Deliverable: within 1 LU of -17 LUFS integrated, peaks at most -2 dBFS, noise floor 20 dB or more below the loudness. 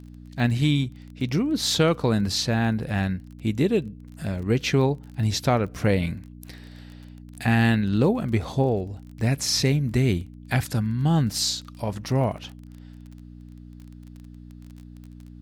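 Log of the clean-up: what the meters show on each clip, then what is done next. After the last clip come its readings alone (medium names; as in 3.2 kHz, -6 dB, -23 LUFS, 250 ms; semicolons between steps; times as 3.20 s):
tick rate 25 per s; hum 60 Hz; highest harmonic 300 Hz; hum level -43 dBFS; loudness -24.0 LUFS; peak level -7.0 dBFS; loudness target -17.0 LUFS
-> de-click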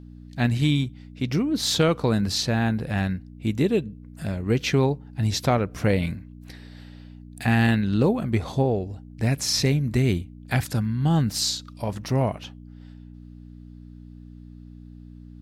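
tick rate 0.13 per s; hum 60 Hz; highest harmonic 300 Hz; hum level -43 dBFS
-> de-hum 60 Hz, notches 5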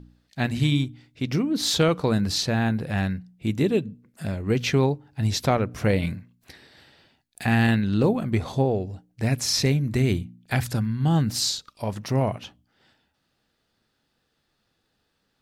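hum not found; loudness -24.5 LUFS; peak level -7.0 dBFS; loudness target -17.0 LUFS
-> trim +7.5 dB; peak limiter -2 dBFS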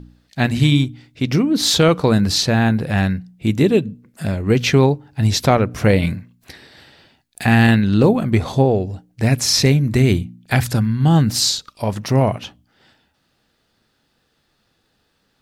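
loudness -17.0 LUFS; peak level -2.0 dBFS; noise floor -66 dBFS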